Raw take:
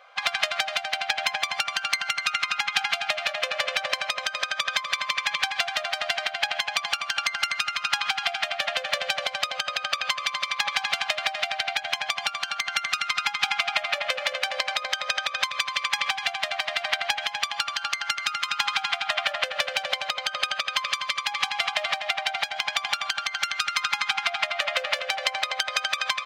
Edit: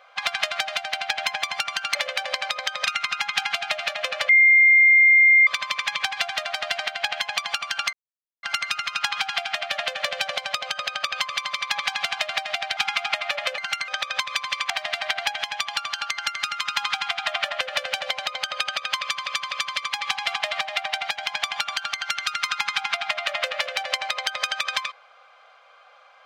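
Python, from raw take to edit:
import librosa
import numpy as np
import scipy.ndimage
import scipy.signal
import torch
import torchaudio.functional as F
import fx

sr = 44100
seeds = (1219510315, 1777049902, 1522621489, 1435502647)

y = fx.edit(x, sr, fx.swap(start_s=1.95, length_s=0.3, other_s=14.21, other_length_s=0.91),
    fx.bleep(start_s=3.68, length_s=1.18, hz=2110.0, db=-11.0),
    fx.insert_silence(at_s=7.32, length_s=0.5),
    fx.cut(start_s=11.66, length_s=1.74),
    fx.cut(start_s=15.94, length_s=0.59),
    fx.repeat(start_s=20.84, length_s=0.25, count=3), tone=tone)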